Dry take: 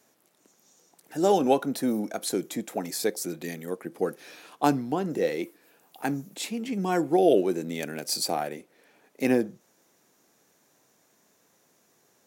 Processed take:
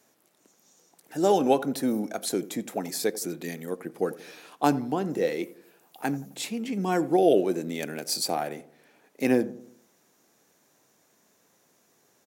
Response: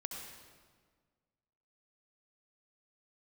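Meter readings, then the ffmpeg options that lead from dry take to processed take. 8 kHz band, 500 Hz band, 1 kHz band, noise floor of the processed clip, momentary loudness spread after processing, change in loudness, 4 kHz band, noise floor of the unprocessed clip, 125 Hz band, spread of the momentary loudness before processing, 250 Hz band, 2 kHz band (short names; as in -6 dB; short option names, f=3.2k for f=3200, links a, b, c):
0.0 dB, 0.0 dB, 0.0 dB, -66 dBFS, 14 LU, 0.0 dB, 0.0 dB, -66 dBFS, 0.0 dB, 14 LU, 0.0 dB, 0.0 dB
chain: -filter_complex "[0:a]asplit=2[a][b];[b]adelay=87,lowpass=f=1k:p=1,volume=-16dB,asplit=2[c][d];[d]adelay=87,lowpass=f=1k:p=1,volume=0.51,asplit=2[e][f];[f]adelay=87,lowpass=f=1k:p=1,volume=0.51,asplit=2[g][h];[h]adelay=87,lowpass=f=1k:p=1,volume=0.51,asplit=2[i][j];[j]adelay=87,lowpass=f=1k:p=1,volume=0.51[k];[a][c][e][g][i][k]amix=inputs=6:normalize=0"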